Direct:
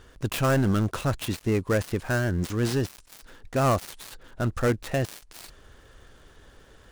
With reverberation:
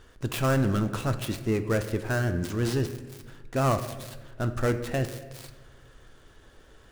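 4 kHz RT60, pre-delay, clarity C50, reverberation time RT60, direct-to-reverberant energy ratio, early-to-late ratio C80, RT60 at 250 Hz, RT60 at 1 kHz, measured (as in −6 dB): 0.80 s, 3 ms, 11.0 dB, 1.3 s, 8.5 dB, 13.0 dB, 1.7 s, 1.1 s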